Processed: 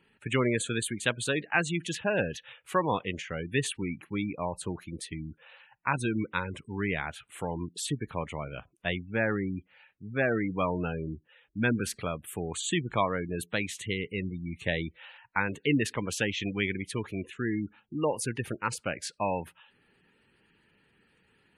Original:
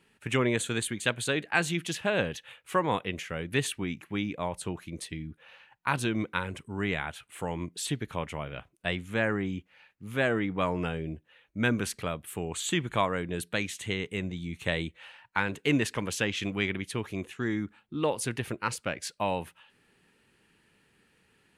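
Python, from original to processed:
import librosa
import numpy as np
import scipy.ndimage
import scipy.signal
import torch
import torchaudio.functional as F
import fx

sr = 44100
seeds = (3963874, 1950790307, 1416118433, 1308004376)

y = fx.spec_gate(x, sr, threshold_db=-20, keep='strong')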